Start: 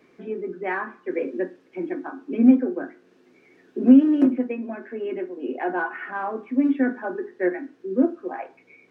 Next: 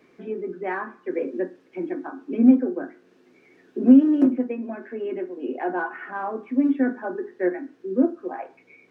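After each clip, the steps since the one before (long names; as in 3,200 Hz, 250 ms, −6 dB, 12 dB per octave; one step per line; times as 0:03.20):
dynamic equaliser 2,500 Hz, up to −5 dB, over −44 dBFS, Q 1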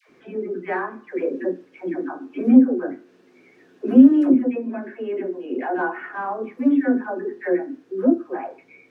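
all-pass dispersion lows, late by 93 ms, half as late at 710 Hz
level +2.5 dB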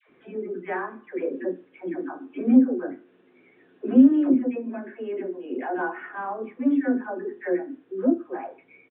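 downsampling to 8,000 Hz
level −4 dB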